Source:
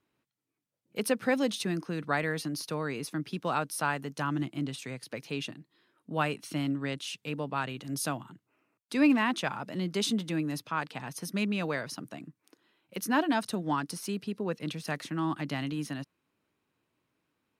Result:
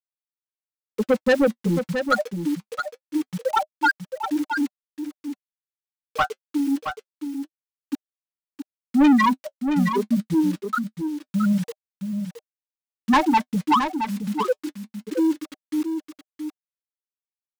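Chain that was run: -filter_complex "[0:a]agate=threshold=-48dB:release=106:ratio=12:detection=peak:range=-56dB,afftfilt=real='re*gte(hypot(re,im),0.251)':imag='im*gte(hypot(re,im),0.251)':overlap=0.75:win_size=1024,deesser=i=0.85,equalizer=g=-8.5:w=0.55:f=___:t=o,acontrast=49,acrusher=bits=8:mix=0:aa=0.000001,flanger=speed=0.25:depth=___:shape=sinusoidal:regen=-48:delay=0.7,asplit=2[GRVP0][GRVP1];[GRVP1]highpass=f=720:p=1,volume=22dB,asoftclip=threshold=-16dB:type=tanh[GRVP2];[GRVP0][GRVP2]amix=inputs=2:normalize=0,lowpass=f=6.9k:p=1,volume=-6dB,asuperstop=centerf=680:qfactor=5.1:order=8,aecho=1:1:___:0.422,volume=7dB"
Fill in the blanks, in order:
400, 6.4, 670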